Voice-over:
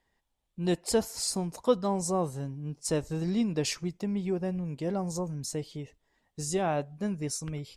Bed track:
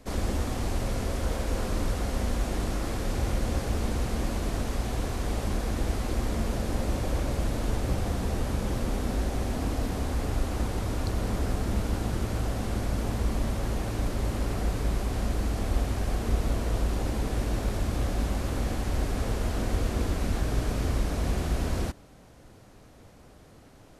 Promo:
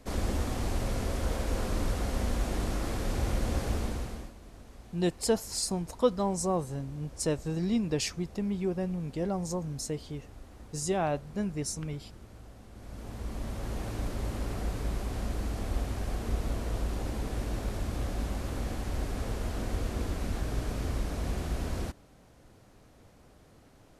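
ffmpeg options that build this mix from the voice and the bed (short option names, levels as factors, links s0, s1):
-filter_complex "[0:a]adelay=4350,volume=0.944[s0];[1:a]volume=4.73,afade=t=out:st=3.71:d=0.62:silence=0.11885,afade=t=in:st=12.73:d=1.12:silence=0.16788[s1];[s0][s1]amix=inputs=2:normalize=0"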